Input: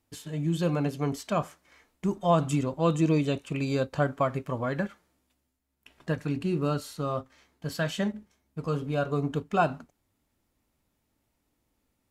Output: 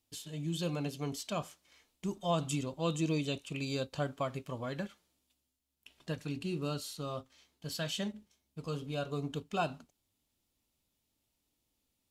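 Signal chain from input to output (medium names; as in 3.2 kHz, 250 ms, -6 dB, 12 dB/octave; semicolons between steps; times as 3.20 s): resonant high shelf 2.4 kHz +7.5 dB, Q 1.5; trim -8.5 dB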